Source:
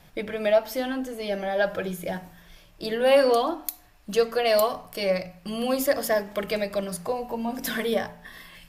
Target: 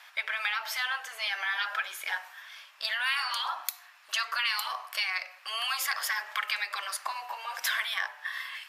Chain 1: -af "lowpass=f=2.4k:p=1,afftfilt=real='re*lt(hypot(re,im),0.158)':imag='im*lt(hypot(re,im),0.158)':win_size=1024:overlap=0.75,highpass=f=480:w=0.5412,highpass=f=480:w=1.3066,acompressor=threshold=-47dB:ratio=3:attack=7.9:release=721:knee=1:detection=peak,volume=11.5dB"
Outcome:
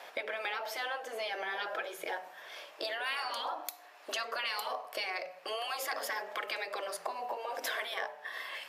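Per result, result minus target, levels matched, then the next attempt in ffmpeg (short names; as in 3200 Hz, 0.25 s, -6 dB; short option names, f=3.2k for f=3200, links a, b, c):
500 Hz band +18.0 dB; compressor: peak gain reduction +7 dB
-af "lowpass=f=2.4k:p=1,afftfilt=real='re*lt(hypot(re,im),0.158)':imag='im*lt(hypot(re,im),0.158)':win_size=1024:overlap=0.75,highpass=f=1.1k:w=0.5412,highpass=f=1.1k:w=1.3066,acompressor=threshold=-47dB:ratio=3:attack=7.9:release=721:knee=1:detection=peak,volume=11.5dB"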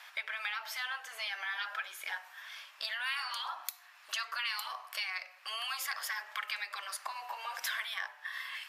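compressor: peak gain reduction +6.5 dB
-af "lowpass=f=2.4k:p=1,afftfilt=real='re*lt(hypot(re,im),0.158)':imag='im*lt(hypot(re,im),0.158)':win_size=1024:overlap=0.75,highpass=f=1.1k:w=0.5412,highpass=f=1.1k:w=1.3066,acompressor=threshold=-37dB:ratio=3:attack=7.9:release=721:knee=1:detection=peak,volume=11.5dB"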